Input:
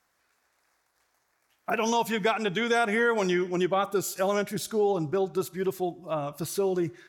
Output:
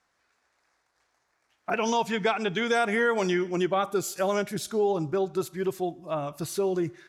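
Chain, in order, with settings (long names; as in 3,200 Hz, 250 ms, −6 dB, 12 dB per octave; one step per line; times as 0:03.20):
low-pass filter 7,200 Hz 12 dB per octave, from 0:02.58 12,000 Hz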